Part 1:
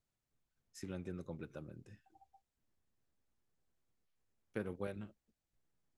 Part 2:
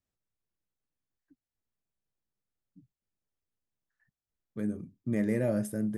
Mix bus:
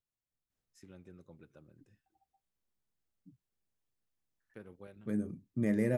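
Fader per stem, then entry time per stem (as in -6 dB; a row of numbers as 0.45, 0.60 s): -10.0, -1.5 dB; 0.00, 0.50 s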